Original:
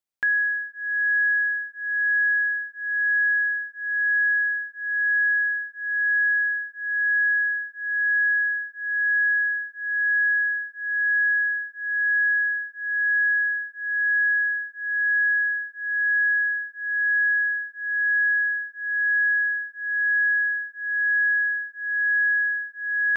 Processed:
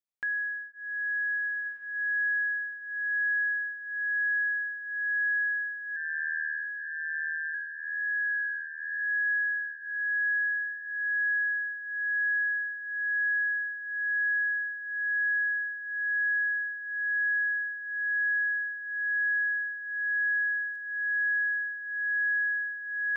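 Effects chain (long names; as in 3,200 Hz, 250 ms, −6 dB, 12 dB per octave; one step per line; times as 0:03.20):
0:05.96–0:07.54: ring modulation 78 Hz
feedback delay with all-pass diffusion 1,437 ms, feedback 43%, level −8 dB
0:20.73–0:21.72: surface crackle 14 per second −43 dBFS
level −9 dB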